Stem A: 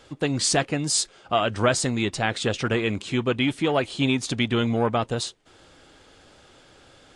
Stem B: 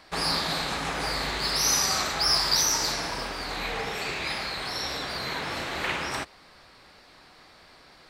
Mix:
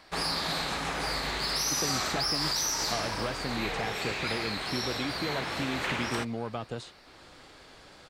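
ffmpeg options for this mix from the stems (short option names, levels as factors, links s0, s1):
-filter_complex "[0:a]acrossover=split=160|2800[s0][s1][s2];[s0]acompressor=threshold=0.00794:ratio=4[s3];[s1]acompressor=threshold=0.0282:ratio=4[s4];[s2]acompressor=threshold=0.00282:ratio=4[s5];[s3][s4][s5]amix=inputs=3:normalize=0,adelay=1600,volume=0.75[s6];[1:a]alimiter=limit=0.126:level=0:latency=1:release=50,volume=0.794[s7];[s6][s7]amix=inputs=2:normalize=0,asoftclip=type=tanh:threshold=0.158"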